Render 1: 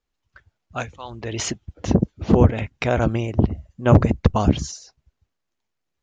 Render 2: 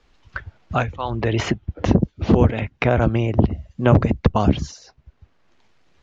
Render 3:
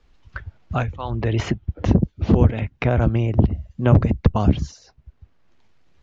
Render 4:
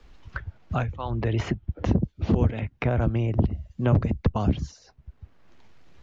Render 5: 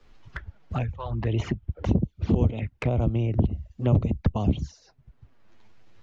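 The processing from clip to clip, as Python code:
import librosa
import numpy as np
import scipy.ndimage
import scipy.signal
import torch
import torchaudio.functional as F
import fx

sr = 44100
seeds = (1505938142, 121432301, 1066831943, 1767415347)

y1 = scipy.signal.sosfilt(scipy.signal.butter(2, 4500.0, 'lowpass', fs=sr, output='sos'), x)
y1 = fx.band_squash(y1, sr, depth_pct=70)
y1 = y1 * 10.0 ** (1.5 / 20.0)
y2 = fx.low_shelf(y1, sr, hz=190.0, db=8.0)
y2 = y2 * 10.0 ** (-4.5 / 20.0)
y3 = fx.band_squash(y2, sr, depth_pct=40)
y3 = y3 * 10.0 ** (-5.5 / 20.0)
y4 = fx.env_flanger(y3, sr, rest_ms=11.1, full_db=-20.5)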